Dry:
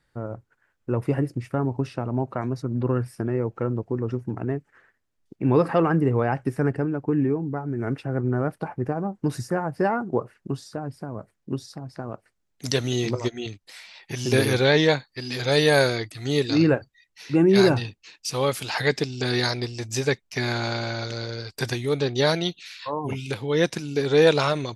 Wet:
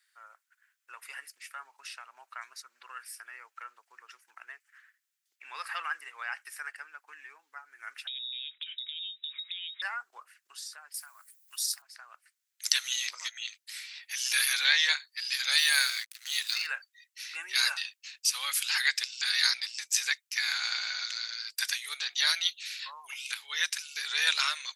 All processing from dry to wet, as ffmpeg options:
-filter_complex "[0:a]asettb=1/sr,asplit=3[a][b][c];[a]atrim=end=8.074[d];[b]atrim=start=8.07:end=9.82,asetpts=PTS-STARTPTS,afade=t=in:d=0.004:c=qsin,afade=t=out:st=1.746:d=0.004:c=qsin,lowpass=f=3.3k:t=q:w=0.5098,lowpass=f=3.3k:t=q:w=0.6013,lowpass=f=3.3k:t=q:w=0.9,lowpass=f=3.3k:t=q:w=2.563,afreqshift=-3900,equalizer=f=230:w=0.36:g=12.5,acompressor=threshold=-36dB:ratio=20:attack=3.2:release=140:knee=1:detection=peak[e];[c]atrim=start=9.816[f];[d][e]acrossfade=d=0.004:c1=hsin:c2=qsin[g];[g][f]acrossfade=d=0.004:c1=qsin:c2=hsin,asettb=1/sr,asplit=3[h][i][j];[h]atrim=end=10.944[k];[i]atrim=start=10.94:end=11.82,asetpts=PTS-STARTPTS,afade=t=in:d=0.004:c=qsin,afade=t=out:st=0.876:d=0.004:c=qsin,highpass=f=700:w=0.5412,highpass=f=700:w=1.3066,aemphasis=mode=production:type=riaa[l];[j]atrim=start=11.816[m];[k][l]acrossfade=d=0.004:c1=hsin:c2=qsin[n];[n][m]acrossfade=d=0.004:c1=qsin:c2=hsin,asettb=1/sr,asplit=3[o][p][q];[o]atrim=end=15.584[r];[p]atrim=start=15.58:end=16.67,asetpts=PTS-STARTPTS,afade=t=in:d=0.004:c=qsin,afade=t=out:st=1.086:d=0.004:c=qsin,lowshelf=f=370:g=-10,aeval=exprs='sgn(val(0))*max(abs(val(0))-0.00891,0)':c=same[s];[q]atrim=start=16.666[t];[r][s]acrossfade=d=0.004:c1=hsin:c2=qsin[u];[u][t]acrossfade=d=0.004:c1=qsin:c2=hsin,highpass=f=1.5k:w=0.5412,highpass=f=1.5k:w=1.3066,highshelf=f=6.7k:g=9.5"

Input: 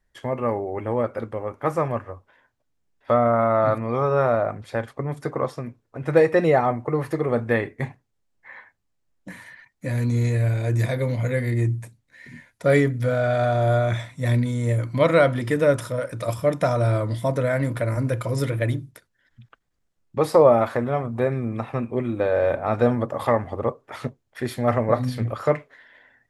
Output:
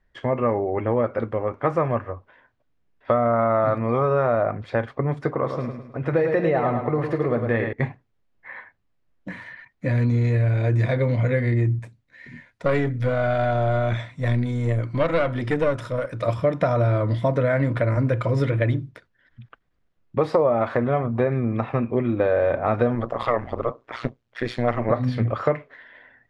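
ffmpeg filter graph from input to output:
-filter_complex "[0:a]asettb=1/sr,asplit=3[a][b][c];[a]atrim=end=5.334[d];[b]atrim=start=5.33:end=7.73,asetpts=PTS-STARTPTS,afade=t=in:d=0.004:c=qsin,afade=t=out:st=2.396:d=0.004:c=qsin,acompressor=threshold=-28dB:ratio=1.5:attack=3.2:release=140:knee=1:detection=peak,aecho=1:1:105|210|315|420|525:0.447|0.188|0.0788|0.0331|0.0139,atrim=end_sample=105840[e];[c]atrim=start=7.726[f];[d][e]acrossfade=d=0.004:c1=hsin:c2=qsin[g];[g][f]acrossfade=d=0.004:c1=qsin:c2=hsin,asettb=1/sr,asplit=3[h][i][j];[h]atrim=end=11.794[k];[i]atrim=start=11.79:end=16.23,asetpts=PTS-STARTPTS,afade=t=in:d=0.004:c=qsin,afade=t=out:st=4.436:d=0.004:c=qsin,highshelf=f=5.6k:g=8,aeval=exprs='(tanh(3.98*val(0)+0.7)-tanh(0.7))/3.98':c=same[l];[j]atrim=start=16.226[m];[k][l]acrossfade=d=0.004:c1=hsin:c2=qsin[n];[n][m]acrossfade=d=0.004:c1=qsin:c2=hsin,asettb=1/sr,asplit=3[o][p][q];[o]atrim=end=22.954[r];[p]atrim=start=22.95:end=24.91,asetpts=PTS-STARTPTS,afade=t=in:d=0.004:c=qsin,afade=t=out:st=1.956:d=0.004:c=qsin,lowpass=8.8k,tremolo=f=120:d=0.947,highshelf=f=2.3k:g=9.5[s];[q]atrim=start=24.906[t];[r][s]acrossfade=d=0.004:c1=hsin:c2=qsin[u];[u][t]acrossfade=d=0.004:c1=qsin:c2=hsin,lowpass=3.2k,bandreject=f=850:w=19,acompressor=threshold=-21dB:ratio=5,volume=4.5dB"

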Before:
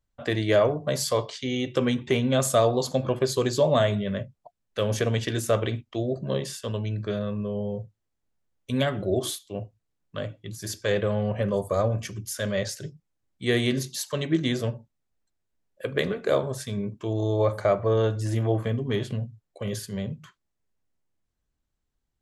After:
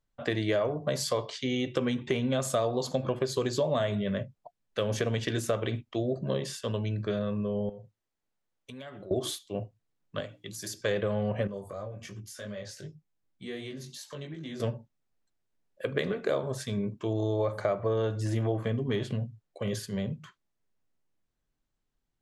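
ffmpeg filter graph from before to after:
-filter_complex "[0:a]asettb=1/sr,asplit=3[a][b][c];[a]atrim=end=7.694[d];[b]atrim=start=7.69:end=9.11,asetpts=PTS-STARTPTS,afade=t=in:d=0.004:c=qsin,afade=t=out:st=1.416:d=0.004:c=qsin,lowshelf=f=280:g=-7.5,acompressor=threshold=-41dB:ratio=6:attack=3.2:release=140:knee=1:detection=peak[e];[c]atrim=start=9.106[f];[d][e]acrossfade=d=0.004:c1=hsin:c2=qsin[g];[g][f]acrossfade=d=0.004:c1=qsin:c2=hsin,asettb=1/sr,asplit=3[h][i][j];[h]atrim=end=10.204[k];[i]atrim=start=10.2:end=10.81,asetpts=PTS-STARTPTS,afade=t=in:d=0.004:c=qsin,afade=t=out:st=0.606:d=0.004:c=qsin,acrossover=split=140|650[l][m][n];[l]acompressor=threshold=-52dB:ratio=4[o];[m]acompressor=threshold=-41dB:ratio=4[p];[n]acompressor=threshold=-41dB:ratio=4[q];[o][p][q]amix=inputs=3:normalize=0,highshelf=f=4.1k:g=8.5,bandreject=f=60:t=h:w=6,bandreject=f=120:t=h:w=6,bandreject=f=180:t=h:w=6,bandreject=f=240:t=h:w=6,bandreject=f=300:t=h:w=6,bandreject=f=360:t=h:w=6,bandreject=f=420:t=h:w=6[r];[j]atrim=start=10.806[s];[k][r]acrossfade=d=0.004:c1=hsin:c2=qsin[t];[t][s]acrossfade=d=0.004:c1=qsin:c2=hsin,asettb=1/sr,asplit=3[u][v][w];[u]atrim=end=11.474[x];[v]atrim=start=11.47:end=14.6,asetpts=PTS-STARTPTS,afade=t=in:d=0.004:c=qsin,afade=t=out:st=3.126:d=0.004:c=qsin,acompressor=threshold=-36dB:ratio=3:attack=3.2:release=140:knee=1:detection=peak,flanger=delay=19:depth=2.1:speed=2.7[y];[w]atrim=start=14.596[z];[x][y]acrossfade=d=0.004:c1=hsin:c2=qsin[aa];[aa][z]acrossfade=d=0.004:c1=qsin:c2=hsin,equalizer=f=64:t=o:w=0.57:g=-14,acompressor=threshold=-25dB:ratio=4,highshelf=f=9.4k:g=-9.5"

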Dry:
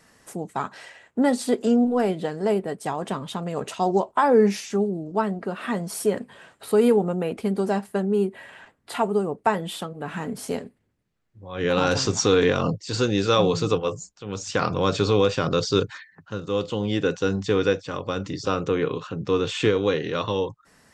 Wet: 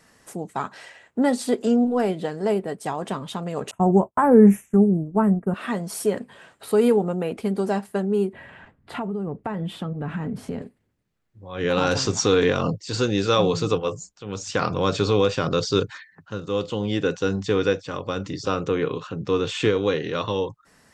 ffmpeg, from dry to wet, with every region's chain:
-filter_complex "[0:a]asettb=1/sr,asplit=3[a][b][c];[a]atrim=end=3.714[d];[b]atrim=start=3.71:end=5.54,asetpts=PTS-STARTPTS,afade=t=in:d=0.004:c=qsin,afade=t=out:st=1.826:d=0.004:c=qsin,agate=range=-33dB:threshold=-29dB:ratio=3:release=100:detection=peak,asuperstop=centerf=4500:order=4:qfactor=0.53,bass=f=250:g=14,treble=f=4k:g=11[e];[c]atrim=start=5.536[f];[d][e]acrossfade=d=0.004:c1=hsin:c2=qsin[g];[g][f]acrossfade=d=0.004:c1=qsin:c2=hsin,asettb=1/sr,asplit=3[h][i][j];[h]atrim=end=8.334[k];[i]atrim=start=8.33:end=10.62,asetpts=PTS-STARTPTS,afade=t=in:d=0.004:c=qsin,afade=t=out:st=2.286:d=0.004:c=qsin,bass=f=250:g=12,treble=f=4k:g=-13,acompressor=threshold=-24dB:ratio=12:attack=3.2:release=140:knee=1:detection=peak[l];[j]atrim=start=10.616[m];[k][l]acrossfade=d=0.004:c1=hsin:c2=qsin[n];[n][m]acrossfade=d=0.004:c1=qsin:c2=hsin"

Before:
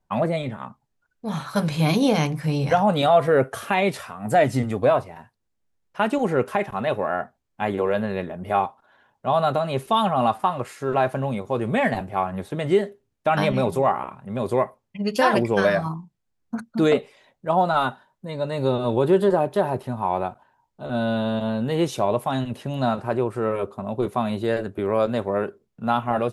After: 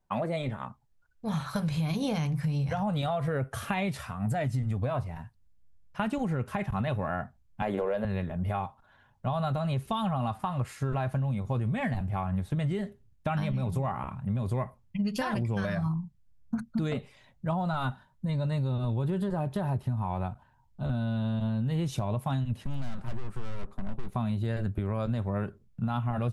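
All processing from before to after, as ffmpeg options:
-filter_complex "[0:a]asettb=1/sr,asplit=3[a][b][c];[a]atrim=end=7.624[d];[b]atrim=start=7.62:end=8.05,asetpts=PTS-STARTPTS,afade=t=in:d=0.004:c=qsin,afade=t=out:st=0.426:d=0.004:c=qsin,highpass=240,equalizer=f=550:w=1.3:g=9,acontrast=31[e];[c]atrim=start=8.046[f];[d][e]acrossfade=d=0.004:c1=hsin:c2=qsin[g];[g][f]acrossfade=d=0.004:c1=qsin:c2=hsin,asettb=1/sr,asplit=3[h][i][j];[h]atrim=end=22.644[k];[i]atrim=start=22.64:end=24.15,asetpts=PTS-STARTPTS,afade=t=in:d=0.004:c=qsin,afade=t=out:st=1.506:d=0.004:c=qsin,highpass=f=160:w=0.5412,highpass=f=160:w=1.3066,aeval=exprs='(tanh(39.8*val(0)+0.8)-tanh(0.8))/39.8':c=same[l];[j]atrim=start=24.146[m];[k][l]acrossfade=d=0.004:c1=hsin:c2=qsin[n];[n][m]acrossfade=d=0.004:c1=qsin:c2=hsin,asubboost=boost=11:cutoff=120,alimiter=limit=-14.5dB:level=0:latency=1:release=238,acompressor=threshold=-23dB:ratio=6,volume=-3dB"

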